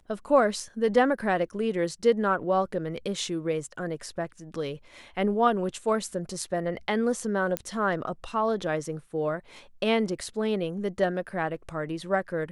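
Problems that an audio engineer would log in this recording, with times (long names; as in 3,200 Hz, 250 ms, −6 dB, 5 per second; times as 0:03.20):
0:07.57: click −12 dBFS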